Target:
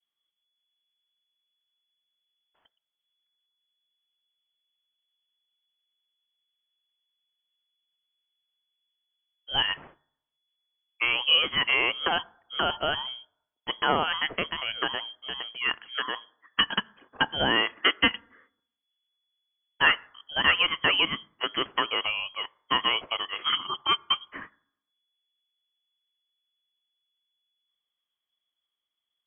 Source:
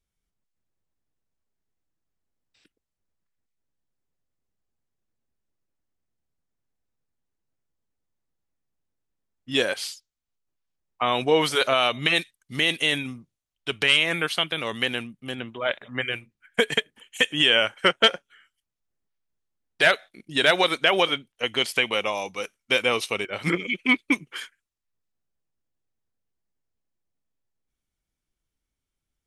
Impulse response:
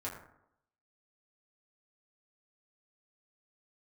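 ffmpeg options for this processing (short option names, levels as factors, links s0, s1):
-filter_complex "[0:a]lowpass=f=2900:t=q:w=0.5098,lowpass=f=2900:t=q:w=0.6013,lowpass=f=2900:t=q:w=0.9,lowpass=f=2900:t=q:w=2.563,afreqshift=-3400,adynamicequalizer=threshold=0.0112:dfrequency=1100:dqfactor=2.9:tfrequency=1100:tqfactor=2.9:attack=5:release=100:ratio=0.375:range=3:mode=cutabove:tftype=bell,asplit=2[s0][s1];[1:a]atrim=start_sample=2205[s2];[s1][s2]afir=irnorm=-1:irlink=0,volume=0.0891[s3];[s0][s3]amix=inputs=2:normalize=0,volume=0.75"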